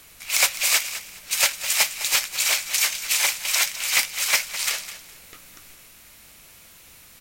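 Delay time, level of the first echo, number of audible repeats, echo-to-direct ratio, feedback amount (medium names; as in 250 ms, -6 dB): 207 ms, -13.0 dB, 2, -12.5 dB, 24%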